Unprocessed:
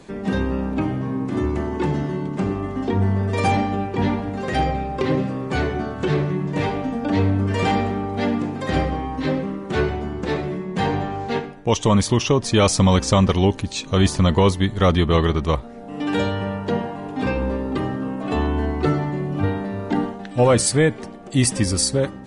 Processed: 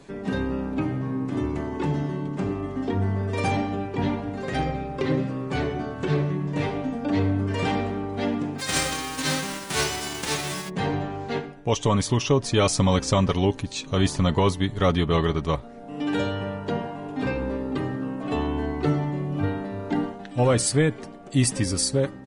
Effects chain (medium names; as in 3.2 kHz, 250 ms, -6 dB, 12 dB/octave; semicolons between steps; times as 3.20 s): 8.58–10.68 s: formants flattened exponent 0.3; comb 7.1 ms, depth 35%; trim -4.5 dB